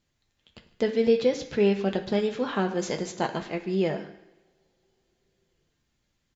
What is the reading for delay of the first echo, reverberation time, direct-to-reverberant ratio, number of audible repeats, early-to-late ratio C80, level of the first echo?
147 ms, 1.3 s, 3.0 dB, 1, 13.0 dB, -20.5 dB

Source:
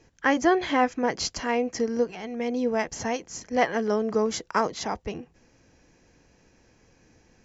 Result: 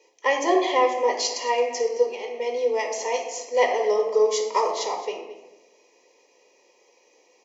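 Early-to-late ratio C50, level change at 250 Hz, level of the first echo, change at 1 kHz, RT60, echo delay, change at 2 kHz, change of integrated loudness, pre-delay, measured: 6.0 dB, -7.5 dB, -16.5 dB, +3.0 dB, 1.0 s, 218 ms, 0.0 dB, +3.0 dB, 4 ms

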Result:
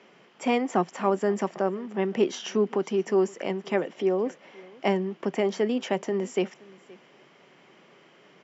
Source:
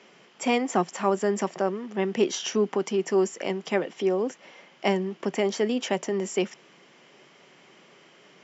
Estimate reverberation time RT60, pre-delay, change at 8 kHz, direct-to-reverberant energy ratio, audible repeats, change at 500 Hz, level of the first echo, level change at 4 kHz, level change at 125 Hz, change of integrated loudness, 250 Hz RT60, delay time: no reverb, no reverb, no reading, no reverb, 1, 0.0 dB, -23.5 dB, -4.0 dB, 0.0 dB, -0.5 dB, no reverb, 522 ms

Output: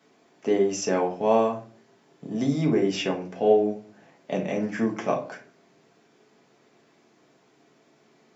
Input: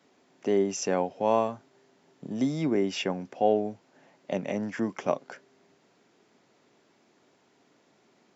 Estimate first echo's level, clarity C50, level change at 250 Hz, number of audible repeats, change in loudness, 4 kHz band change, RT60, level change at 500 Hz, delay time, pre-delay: no echo, 10.0 dB, +3.5 dB, no echo, +3.5 dB, +2.5 dB, 0.45 s, +4.0 dB, no echo, 5 ms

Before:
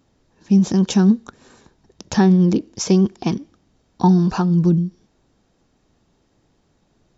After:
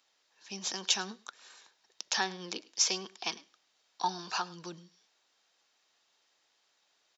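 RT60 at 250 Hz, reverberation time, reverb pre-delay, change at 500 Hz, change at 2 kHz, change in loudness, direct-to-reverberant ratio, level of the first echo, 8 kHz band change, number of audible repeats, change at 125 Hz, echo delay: no reverb, no reverb, no reverb, -21.5 dB, -3.0 dB, -15.5 dB, no reverb, -22.5 dB, no reading, 1, -35.0 dB, 105 ms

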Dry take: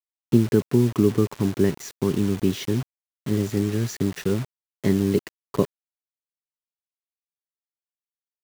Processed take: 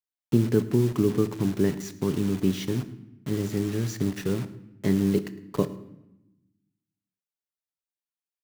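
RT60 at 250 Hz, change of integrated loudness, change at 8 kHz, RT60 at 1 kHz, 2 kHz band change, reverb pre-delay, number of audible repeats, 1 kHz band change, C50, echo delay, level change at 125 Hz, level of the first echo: 1.4 s, -3.0 dB, -3.0 dB, 0.90 s, -3.0 dB, 6 ms, 1, -3.5 dB, 14.0 dB, 107 ms, -2.5 dB, -20.0 dB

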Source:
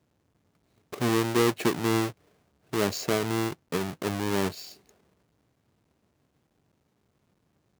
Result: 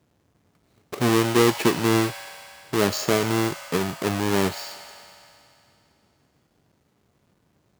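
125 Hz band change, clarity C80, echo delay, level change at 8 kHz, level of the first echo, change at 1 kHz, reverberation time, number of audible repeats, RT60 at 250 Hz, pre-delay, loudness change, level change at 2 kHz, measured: +5.0 dB, 9.0 dB, no echo, +6.0 dB, no echo, +5.5 dB, 2.8 s, no echo, 2.8 s, 4 ms, +5.0 dB, +5.5 dB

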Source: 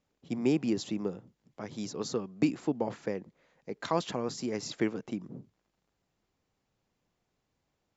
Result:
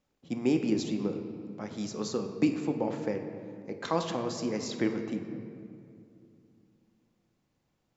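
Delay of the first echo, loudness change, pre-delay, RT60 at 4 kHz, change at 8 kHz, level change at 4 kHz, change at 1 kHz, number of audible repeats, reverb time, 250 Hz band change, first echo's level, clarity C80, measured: no echo, +1.0 dB, 4 ms, 1.3 s, no reading, +0.5 dB, +1.0 dB, no echo, 2.6 s, +2.0 dB, no echo, 8.5 dB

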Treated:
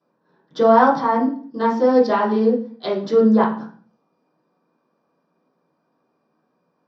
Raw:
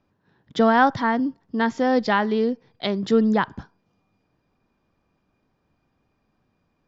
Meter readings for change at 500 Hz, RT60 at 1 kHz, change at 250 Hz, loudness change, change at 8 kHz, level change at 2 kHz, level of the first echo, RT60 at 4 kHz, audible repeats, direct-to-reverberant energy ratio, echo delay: +6.5 dB, 0.45 s, +3.0 dB, +4.0 dB, no reading, -3.5 dB, no echo, 0.40 s, no echo, -11.0 dB, no echo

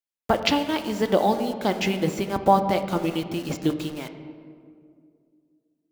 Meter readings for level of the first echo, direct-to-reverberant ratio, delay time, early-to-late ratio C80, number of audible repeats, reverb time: no echo, 7.0 dB, no echo, 10.5 dB, no echo, 2.3 s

